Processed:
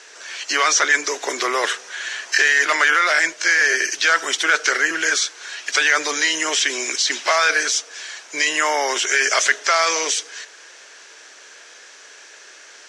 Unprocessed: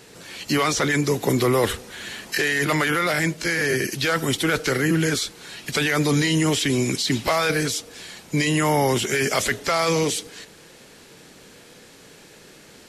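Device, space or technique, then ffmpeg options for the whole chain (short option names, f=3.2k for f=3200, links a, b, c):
phone speaker on a table: -af "highpass=f=490:w=0.5412,highpass=f=490:w=1.3066,equalizer=f=500:t=q:w=4:g=-8,equalizer=f=810:t=q:w=4:g=-5,equalizer=f=1.6k:t=q:w=4:g=6,equalizer=f=4.1k:t=q:w=4:g=-3,equalizer=f=6k:t=q:w=4:g=7,lowpass=f=7.5k:w=0.5412,lowpass=f=7.5k:w=1.3066,volume=5dB"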